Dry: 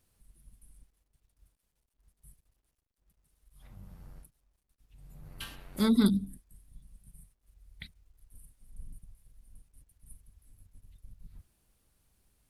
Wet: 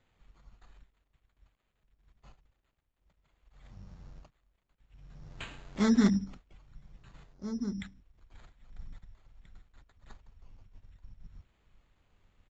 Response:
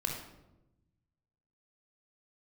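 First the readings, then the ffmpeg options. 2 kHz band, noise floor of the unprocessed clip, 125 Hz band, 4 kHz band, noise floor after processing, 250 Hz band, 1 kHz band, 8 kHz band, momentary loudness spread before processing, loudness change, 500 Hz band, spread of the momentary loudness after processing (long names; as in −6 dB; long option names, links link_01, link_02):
+3.5 dB, −81 dBFS, +0.5 dB, −3.5 dB, −79 dBFS, +0.5 dB, +1.5 dB, +0.5 dB, 20 LU, −1.5 dB, +0.5 dB, 21 LU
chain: -filter_complex "[0:a]asplit=2[link_01][link_02];[link_02]adelay=1633,volume=-11dB,highshelf=frequency=4000:gain=-36.7[link_03];[link_01][link_03]amix=inputs=2:normalize=0,acrusher=samples=8:mix=1:aa=0.000001,aresample=16000,aresample=44100"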